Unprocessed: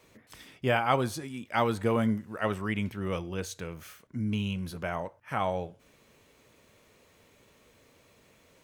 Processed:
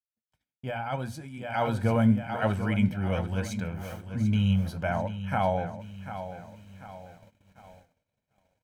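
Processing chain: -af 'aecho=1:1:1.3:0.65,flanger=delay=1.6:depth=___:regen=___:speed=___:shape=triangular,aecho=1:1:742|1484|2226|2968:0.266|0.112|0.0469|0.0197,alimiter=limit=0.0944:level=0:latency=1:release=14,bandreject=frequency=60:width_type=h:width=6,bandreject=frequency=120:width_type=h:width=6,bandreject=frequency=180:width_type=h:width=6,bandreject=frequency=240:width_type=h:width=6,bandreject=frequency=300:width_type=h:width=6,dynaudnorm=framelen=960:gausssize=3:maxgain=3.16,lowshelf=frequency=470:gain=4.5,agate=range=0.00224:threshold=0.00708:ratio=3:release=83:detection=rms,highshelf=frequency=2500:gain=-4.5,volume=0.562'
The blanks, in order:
9.2, 76, 0.77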